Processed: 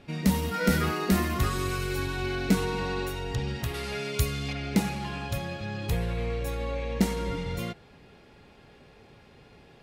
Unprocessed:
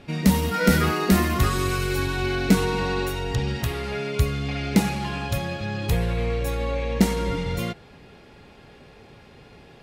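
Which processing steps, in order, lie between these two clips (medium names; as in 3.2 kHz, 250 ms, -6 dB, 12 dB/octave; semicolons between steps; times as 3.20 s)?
3.74–4.53 s: treble shelf 3.4 kHz +11 dB; trim -5.5 dB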